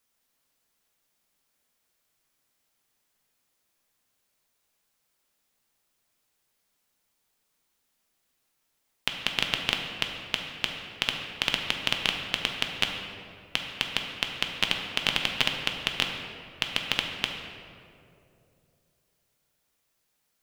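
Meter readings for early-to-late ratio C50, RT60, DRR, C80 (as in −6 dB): 4.0 dB, 2.7 s, 2.0 dB, 5.0 dB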